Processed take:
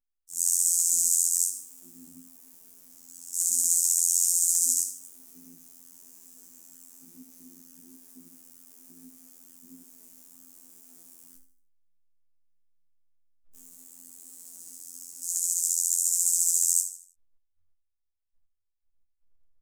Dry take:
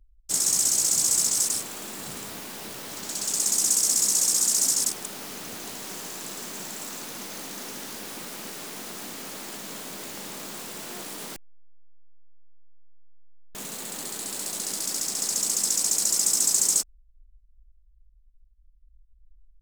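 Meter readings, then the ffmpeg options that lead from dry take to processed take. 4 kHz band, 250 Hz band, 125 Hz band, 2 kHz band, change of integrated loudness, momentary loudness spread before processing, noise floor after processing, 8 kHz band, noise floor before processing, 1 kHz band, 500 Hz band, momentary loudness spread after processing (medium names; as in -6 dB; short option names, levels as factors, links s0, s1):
-12.5 dB, -13.0 dB, under -15 dB, under -25 dB, +2.0 dB, 16 LU, -76 dBFS, -1.5 dB, -57 dBFS, under -25 dB, under -25 dB, 16 LU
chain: -filter_complex "[0:a]afwtdn=0.0355,equalizer=f=250:w=2.7:g=14.5,asplit=2[s0][s1];[s1]acompressor=threshold=0.0158:ratio=6,volume=1[s2];[s0][s2]amix=inputs=2:normalize=0,aexciter=amount=7.7:drive=4:freq=5700,afftfilt=real='hypot(re,im)*cos(PI*b)':imag='0':win_size=2048:overlap=0.75,flanger=delay=16:depth=6.6:speed=1.1,acrusher=bits=9:mode=log:mix=0:aa=0.000001,asplit=2[s3][s4];[s4]aecho=0:1:77|154|231|308:0.282|0.107|0.0407|0.0155[s5];[s3][s5]amix=inputs=2:normalize=0,adynamicequalizer=threshold=0.0501:dfrequency=3100:dqfactor=0.7:tfrequency=3100:tqfactor=0.7:attack=5:release=100:ratio=0.375:range=1.5:mode=boostabove:tftype=highshelf,volume=0.2"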